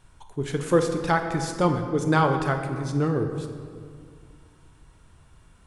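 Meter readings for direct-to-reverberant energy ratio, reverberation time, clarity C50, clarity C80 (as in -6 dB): 5.0 dB, 2.2 s, 7.0 dB, 8.0 dB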